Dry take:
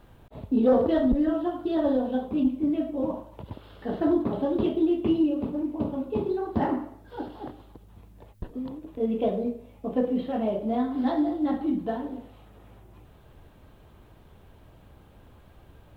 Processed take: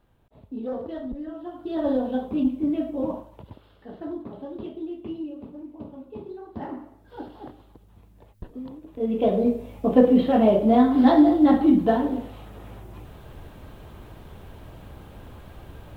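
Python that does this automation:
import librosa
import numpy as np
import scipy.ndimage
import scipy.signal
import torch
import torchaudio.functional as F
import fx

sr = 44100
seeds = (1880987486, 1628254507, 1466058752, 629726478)

y = fx.gain(x, sr, db=fx.line((1.34, -11.0), (1.91, 1.0), (3.15, 1.0), (3.87, -10.5), (6.5, -10.5), (7.18, -2.5), (8.86, -2.5), (9.56, 9.5)))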